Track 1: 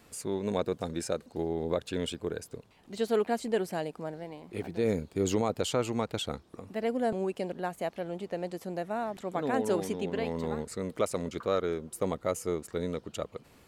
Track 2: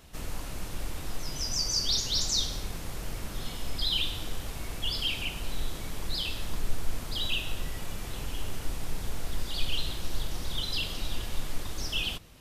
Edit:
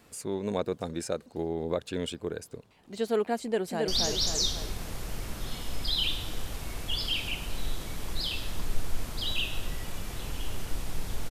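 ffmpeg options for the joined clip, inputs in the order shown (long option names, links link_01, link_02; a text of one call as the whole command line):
ffmpeg -i cue0.wav -i cue1.wav -filter_complex "[0:a]apad=whole_dur=11.3,atrim=end=11.3,atrim=end=3.882[link_01];[1:a]atrim=start=1.818:end=9.24[link_02];[link_01][link_02]acrossfade=duration=0.004:curve1=hsin:curve2=hsin,asplit=2[link_03][link_04];[link_04]afade=type=in:start_time=3.4:duration=0.01,afade=type=out:start_time=3.88:duration=0.01,aecho=0:1:270|540|810|1080|1350|1620|1890:0.794328|0.397164|0.198582|0.099291|0.0496455|0.0248228|0.0124114[link_05];[link_03][link_05]amix=inputs=2:normalize=0" out.wav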